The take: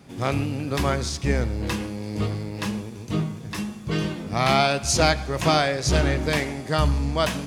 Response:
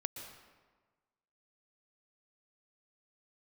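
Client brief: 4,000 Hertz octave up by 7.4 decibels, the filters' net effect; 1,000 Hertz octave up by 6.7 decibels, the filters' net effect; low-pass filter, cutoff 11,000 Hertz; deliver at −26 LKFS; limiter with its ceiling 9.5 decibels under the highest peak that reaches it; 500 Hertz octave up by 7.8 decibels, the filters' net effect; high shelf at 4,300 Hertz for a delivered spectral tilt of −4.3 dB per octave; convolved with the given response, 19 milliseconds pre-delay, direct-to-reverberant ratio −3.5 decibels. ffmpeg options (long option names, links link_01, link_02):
-filter_complex "[0:a]lowpass=11000,equalizer=frequency=500:width_type=o:gain=8,equalizer=frequency=1000:width_type=o:gain=5.5,equalizer=frequency=4000:width_type=o:gain=6,highshelf=frequency=4300:gain=5,alimiter=limit=-8.5dB:level=0:latency=1,asplit=2[link_01][link_02];[1:a]atrim=start_sample=2205,adelay=19[link_03];[link_02][link_03]afir=irnorm=-1:irlink=0,volume=4dB[link_04];[link_01][link_04]amix=inputs=2:normalize=0,volume=-9.5dB"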